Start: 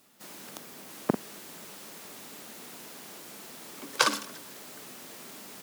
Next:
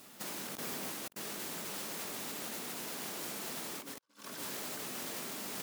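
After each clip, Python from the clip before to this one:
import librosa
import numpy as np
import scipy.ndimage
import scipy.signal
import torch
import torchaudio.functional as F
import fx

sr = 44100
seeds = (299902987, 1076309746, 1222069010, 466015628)

y = fx.over_compress(x, sr, threshold_db=-47.0, ratio=-0.5)
y = F.gain(torch.from_numpy(y), 1.5).numpy()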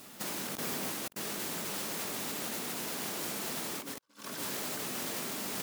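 y = fx.low_shelf(x, sr, hz=160.0, db=3.5)
y = F.gain(torch.from_numpy(y), 4.0).numpy()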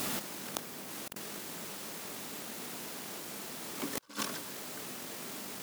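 y = fx.over_compress(x, sr, threshold_db=-48.0, ratio=-1.0)
y = F.gain(torch.from_numpy(y), 6.0).numpy()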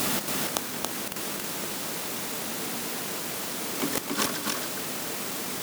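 y = x + 10.0 ** (-3.0 / 20.0) * np.pad(x, (int(278 * sr / 1000.0), 0))[:len(x)]
y = F.gain(torch.from_numpy(y), 8.5).numpy()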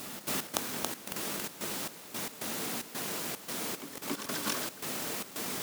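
y = fx.step_gate(x, sr, bpm=112, pattern='..x.xxx.xxx.xx', floor_db=-12.0, edge_ms=4.5)
y = F.gain(torch.from_numpy(y), -3.5).numpy()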